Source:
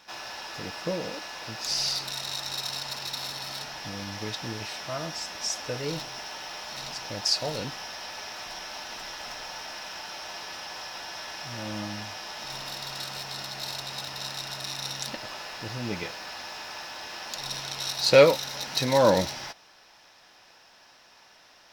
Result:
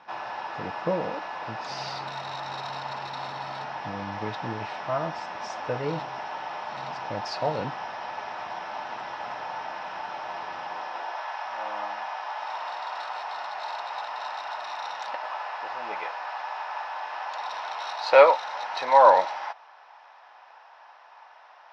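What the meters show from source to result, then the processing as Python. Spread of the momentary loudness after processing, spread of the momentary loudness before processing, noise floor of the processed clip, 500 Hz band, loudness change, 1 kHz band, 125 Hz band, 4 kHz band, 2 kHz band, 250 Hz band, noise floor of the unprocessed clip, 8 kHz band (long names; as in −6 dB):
12 LU, 12 LU, −52 dBFS, +1.0 dB, +1.0 dB, +10.0 dB, −3.5 dB, −9.5 dB, +1.5 dB, −4.5 dB, −56 dBFS, below −15 dB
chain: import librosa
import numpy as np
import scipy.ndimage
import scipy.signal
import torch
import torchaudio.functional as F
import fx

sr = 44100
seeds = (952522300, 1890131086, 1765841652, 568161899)

y = scipy.signal.sosfilt(scipy.signal.butter(2, 2400.0, 'lowpass', fs=sr, output='sos'), x)
y = fx.peak_eq(y, sr, hz=890.0, db=10.0, octaves=1.2)
y = fx.filter_sweep_highpass(y, sr, from_hz=110.0, to_hz=750.0, start_s=10.6, end_s=11.26, q=1.1)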